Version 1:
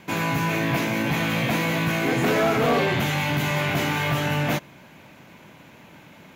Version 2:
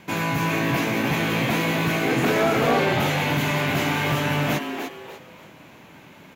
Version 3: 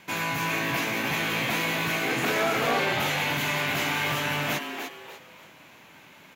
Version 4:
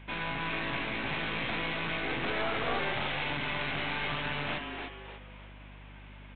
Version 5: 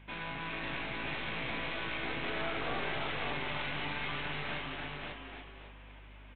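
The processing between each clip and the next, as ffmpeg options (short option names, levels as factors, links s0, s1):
-filter_complex "[0:a]asplit=5[s0][s1][s2][s3][s4];[s1]adelay=297,afreqshift=120,volume=0.447[s5];[s2]adelay=594,afreqshift=240,volume=0.138[s6];[s3]adelay=891,afreqshift=360,volume=0.0432[s7];[s4]adelay=1188,afreqshift=480,volume=0.0133[s8];[s0][s5][s6][s7][s8]amix=inputs=5:normalize=0"
-af "tiltshelf=f=710:g=-5,volume=0.562"
-af "aresample=8000,aeval=exprs='clip(val(0),-1,0.0168)':c=same,aresample=44100,aeval=exprs='val(0)+0.00562*(sin(2*PI*50*n/s)+sin(2*PI*2*50*n/s)/2+sin(2*PI*3*50*n/s)/3+sin(2*PI*4*50*n/s)/4+sin(2*PI*5*50*n/s)/5)':c=same,volume=0.668"
-af "aecho=1:1:543|1086|1629:0.668|0.114|0.0193,volume=0.531"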